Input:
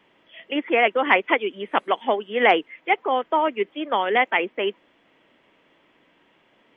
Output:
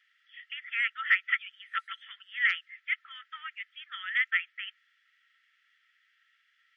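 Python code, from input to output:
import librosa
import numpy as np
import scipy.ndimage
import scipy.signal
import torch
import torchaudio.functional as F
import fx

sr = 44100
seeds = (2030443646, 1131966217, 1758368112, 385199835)

y = scipy.signal.sosfilt(scipy.signal.cheby1(6, 9, 1300.0, 'highpass', fs=sr, output='sos'), x)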